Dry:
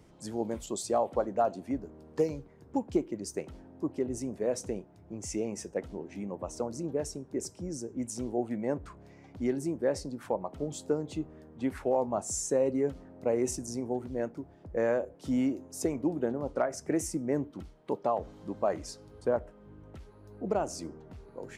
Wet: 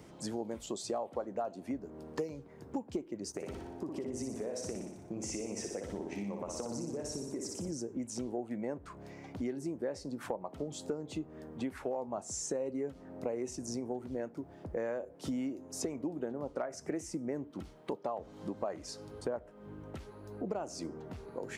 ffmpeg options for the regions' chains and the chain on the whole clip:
-filter_complex "[0:a]asettb=1/sr,asplit=3[a][b][c];[a]atrim=end=3.324[d];[b]atrim=start=3.32:end=7.72,asetpts=PTS-STARTPTS,afade=t=in:d=0.004:c=qsin,afade=t=out:st=4.396:d=0.004:c=qsin,agate=range=-33dB:threshold=-54dB:ratio=3:release=100:detection=peak,acompressor=threshold=-36dB:ratio=6:attack=3.2:release=140:knee=1:detection=peak,aecho=1:1:60|120|180|240|300|360|420|480:0.596|0.334|0.187|0.105|0.0586|0.0328|0.0184|0.0103,atrim=end_sample=194040[e];[c]atrim=start=7.716[f];[d][e]acrossfade=d=0.004:c1=hsin:c2=qsin[g];[g][f]acrossfade=d=0.004:c1=qsin:c2=hsin,acrossover=split=6800[h][i];[i]acompressor=threshold=-53dB:ratio=4:attack=1:release=60[j];[h][j]amix=inputs=2:normalize=0,highpass=f=130:p=1,acompressor=threshold=-42dB:ratio=4,volume=6dB"

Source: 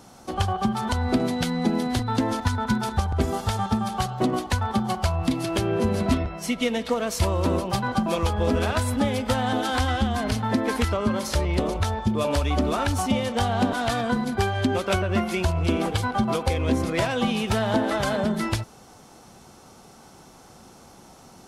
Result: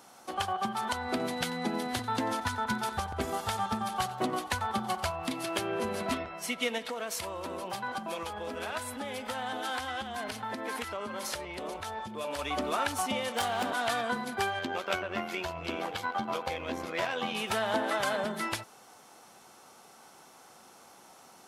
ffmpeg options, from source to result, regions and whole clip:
-filter_complex "[0:a]asettb=1/sr,asplit=3[a][b][c];[a]atrim=end=1.174[d];[b]atrim=start=1.17:end=5.11,asetpts=PTS-STARTPTS,afade=t=in:d=0.004:c=qsin,afade=t=out:st=3.936:d=0.004:c=qsin,lowshelf=f=120:g=9,aecho=1:1:91:0.126,atrim=end_sample=173754[e];[c]atrim=start=5.106[f];[d][e]acrossfade=d=0.004:c1=hsin:c2=qsin[g];[g][f]acrossfade=d=0.004:c1=qsin:c2=hsin,asettb=1/sr,asplit=3[h][i][j];[h]atrim=end=6.784[k];[i]atrim=start=6.78:end=12.39,asetpts=PTS-STARTPTS,afade=t=in:d=0.004:c=qsin,afade=t=out:st=5.606:d=0.004:c=qsin,acompressor=threshold=-26dB:ratio=3:attack=3.2:release=140:knee=1:detection=peak,bandreject=f=1.2k:w=24[l];[j]atrim=start=12.386[m];[k][l]acrossfade=d=0.004:c1=hsin:c2=qsin[n];[n][m]acrossfade=d=0.004:c1=qsin:c2=hsin,asettb=1/sr,asplit=3[o][p][q];[o]atrim=end=13.284[r];[p]atrim=start=13.28:end=13.71,asetpts=PTS-STARTPTS,afade=t=in:d=0.004:c=qsin,afade=t=out:st=0.426:d=0.004:c=qsin,highshelf=f=4.8k:g=6.5,asoftclip=type=hard:threshold=-19.5dB[s];[q]atrim=start=13.706[t];[r][s]acrossfade=d=0.004:c1=hsin:c2=qsin[u];[u][t]acrossfade=d=0.004:c1=qsin:c2=hsin,asettb=1/sr,asplit=3[v][w][x];[v]atrim=end=14.594[y];[w]atrim=start=14.59:end=17.35,asetpts=PTS-STARTPTS,afade=t=in:d=0.004:c=qsin,afade=t=out:st=2.756:d=0.004:c=qsin,equalizer=f=9.5k:w=1.8:g=-11,tremolo=f=86:d=0.571,asplit=2[z][aa];[aa]adelay=14,volume=-12.5dB[ab];[z][ab]amix=inputs=2:normalize=0,atrim=end_sample=121716[ac];[x]atrim=start=17.346[ad];[y][ac]acrossfade=d=0.004:c1=hsin:c2=qsin[ae];[ae][ad]acrossfade=d=0.004:c1=qsin:c2=hsin,highpass=f=1k:p=1,equalizer=f=5.4k:w=0.77:g=-5"

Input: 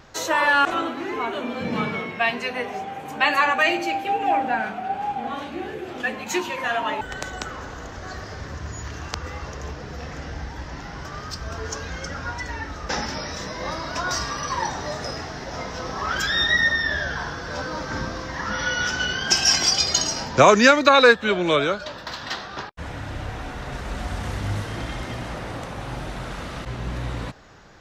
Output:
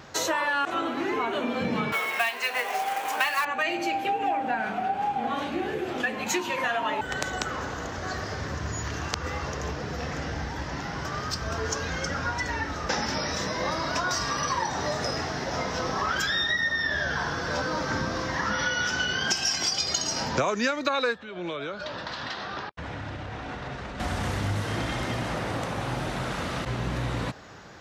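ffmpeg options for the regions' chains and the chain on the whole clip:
-filter_complex "[0:a]asettb=1/sr,asplit=3[a][b][c];[a]atrim=end=1.924[d];[b]atrim=start=1.92:end=3.45,asetpts=PTS-STARTPTS,afade=t=in:d=0.004:c=qsin,afade=t=out:st=1.526:d=0.004:c=qsin,highpass=750,acontrast=52,acrusher=bits=3:mode=log:mix=0:aa=0.000001[e];[c]atrim=start=3.446[f];[d][e]acrossfade=d=0.004:c1=hsin:c2=qsin[g];[g][f]acrossfade=d=0.004:c1=qsin:c2=hsin,asettb=1/sr,asplit=3[h][i][j];[h]atrim=end=21.184[k];[i]atrim=start=21.18:end=24,asetpts=PTS-STARTPTS,afade=t=in:d=0.004:c=qsin,afade=t=out:st=2.816:d=0.004:c=qsin,lowpass=5.1k,acompressor=threshold=-33dB:ratio=8:attack=3.2:release=140:knee=1:detection=peak[l];[j]atrim=start=23.996[m];[k][l]acrossfade=d=0.004:c1=hsin:c2=qsin[n];[n][m]acrossfade=d=0.004:c1=qsin:c2=hsin,highpass=78,acompressor=threshold=-27dB:ratio=6,volume=3dB"

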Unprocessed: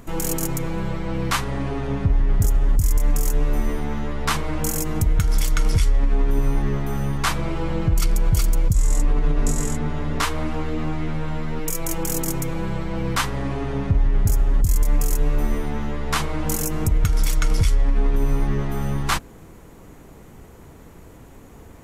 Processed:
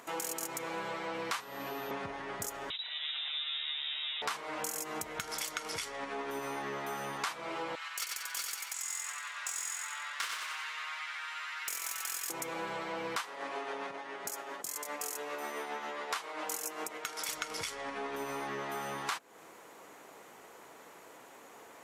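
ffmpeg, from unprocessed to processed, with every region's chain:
-filter_complex "[0:a]asettb=1/sr,asplit=3[a][b][c];[a]atrim=end=1.404[d];[b]atrim=start=1.4:end=1.91,asetpts=PTS-STARTPTS,afade=t=in:d=0.004:c=qsin,afade=t=out:st=0.506:d=0.004:c=qsin,acrossover=split=320|3000[e][f][g];[f]acompressor=threshold=-37dB:ratio=2:attack=3.2:release=140:knee=2.83:detection=peak[h];[e][h][g]amix=inputs=3:normalize=0,bandreject=f=2.2k:w=21,aeval=exprs='val(0)+0.00501*sin(2*PI*13000*n/s)':c=same[i];[c]atrim=start=1.906[j];[d][i]acrossfade=d=0.004:c1=hsin:c2=qsin[k];[k][j]acrossfade=d=0.004:c1=qsin:c2=hsin,asettb=1/sr,asplit=3[l][m][n];[l]atrim=end=2.704[o];[m]atrim=start=2.7:end=4.22,asetpts=PTS-STARTPTS,afade=t=in:d=0.004:c=qsin,afade=t=out:st=1.516:d=0.004:c=qsin,highpass=310,lowpass=f=3.4k:t=q:w=0.5098,lowpass=f=3.4k:t=q:w=0.6013,lowpass=f=3.4k:t=q:w=0.9,lowpass=f=3.4k:t=q:w=2.563,afreqshift=-4000[p];[n]atrim=start=4.216[q];[o][p]acrossfade=d=0.004:c1=hsin:c2=qsin[r];[r][q]acrossfade=d=0.004:c1=qsin:c2=hsin,asettb=1/sr,asplit=3[s][t][u];[s]atrim=end=7.754[v];[t]atrim=start=7.75:end=12.3,asetpts=PTS-STARTPTS,afade=t=in:d=0.004:c=qsin,afade=t=out:st=4.546:d=0.004:c=qsin,highpass=f=1.3k:w=0.5412,highpass=f=1.3k:w=1.3066,aeval=exprs='clip(val(0),-1,0.0282)':c=same,aecho=1:1:92|184|276|368|460|552:0.668|0.321|0.154|0.0739|0.0355|0.017,atrim=end_sample=200655[w];[u]atrim=start=12.296[x];[v][w]acrossfade=d=0.004:c1=hsin:c2=qsin[y];[y][x]acrossfade=d=0.004:c1=qsin:c2=hsin,asettb=1/sr,asplit=3[z][aa][ab];[z]atrim=end=13.174[ac];[aa]atrim=start=13.17:end=17.29,asetpts=PTS-STARTPTS,afade=t=in:d=0.004:c=qsin,afade=t=out:st=4.116:d=0.004:c=qsin,highpass=290,tremolo=f=7.4:d=0.39[ad];[ab]atrim=start=17.286[ae];[ac][ad]acrossfade=d=0.004:c1=hsin:c2=qsin[af];[af][ae]acrossfade=d=0.004:c1=qsin:c2=hsin,highpass=620,highshelf=f=9.9k:g=-6.5,acompressor=threshold=-34dB:ratio=6"

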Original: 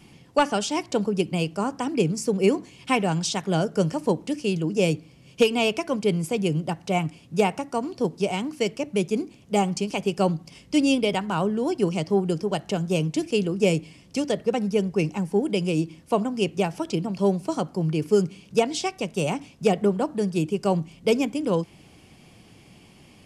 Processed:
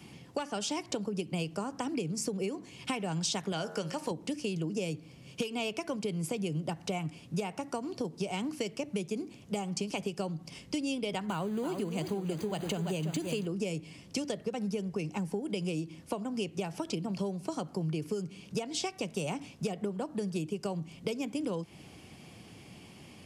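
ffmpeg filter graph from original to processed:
-filter_complex "[0:a]asettb=1/sr,asplit=3[a][b][c];[a]atrim=end=3.524[d];[b]atrim=start=3.52:end=4.11,asetpts=PTS-STARTPTS,afade=t=in:d=0.004:c=qsin,afade=t=out:st=0.586:d=0.004:c=qsin,acrossover=split=5000[e][f];[f]acompressor=threshold=-50dB:ratio=4:attack=1:release=60[g];[e][g]amix=inputs=2:normalize=0,tiltshelf=f=710:g=-6.5,bandreject=f=90.83:t=h:w=4,bandreject=f=181.66:t=h:w=4,bandreject=f=272.49:t=h:w=4,bandreject=f=363.32:t=h:w=4,bandreject=f=454.15:t=h:w=4,bandreject=f=544.98:t=h:w=4,bandreject=f=635.81:t=h:w=4,bandreject=f=726.64:t=h:w=4,bandreject=f=817.47:t=h:w=4,bandreject=f=908.3:t=h:w=4,bandreject=f=999.13:t=h:w=4,bandreject=f=1.08996k:t=h:w=4,bandreject=f=1.18079k:t=h:w=4,bandreject=f=1.27162k:t=h:w=4,bandreject=f=1.36245k:t=h:w=4,bandreject=f=1.45328k:t=h:w=4,bandreject=f=1.54411k:t=h:w=4,bandreject=f=1.63494k:t=h:w=4,bandreject=f=1.72577k:t=h:w=4,bandreject=f=1.8166k:t=h:w=4[h];[c]atrim=start=4.106[i];[d][h]acrossfade=d=0.004:c1=hsin:c2=qsin[j];[j][i]acrossfade=d=0.004:c1=qsin:c2=hsin,asettb=1/sr,asplit=3[k][l][m];[k]atrim=end=11.294[n];[l]atrim=start=11.29:end=13.46,asetpts=PTS-STARTPTS,afade=t=in:d=0.004:c=qsin,afade=t=out:st=2.166:d=0.004:c=qsin,aeval=exprs='val(0)+0.5*0.0178*sgn(val(0))':c=same,asuperstop=centerf=5400:order=12:qfactor=5.8,aecho=1:1:335:0.355,atrim=end_sample=95697[o];[m]atrim=start=13.456[p];[n][o]acrossfade=d=0.004:c1=hsin:c2=qsin[q];[q][p]acrossfade=d=0.004:c1=qsin:c2=hsin,acompressor=threshold=-28dB:ratio=6,highpass=61,acrossover=split=120|3000[r][s][t];[s]acompressor=threshold=-32dB:ratio=2.5[u];[r][u][t]amix=inputs=3:normalize=0"

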